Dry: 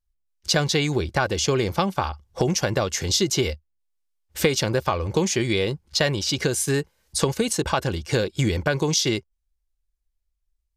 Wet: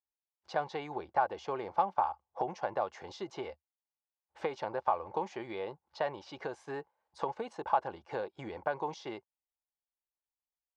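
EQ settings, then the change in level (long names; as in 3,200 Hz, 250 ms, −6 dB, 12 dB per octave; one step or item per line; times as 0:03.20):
resonant band-pass 840 Hz, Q 3.6
high-frequency loss of the air 81 metres
0.0 dB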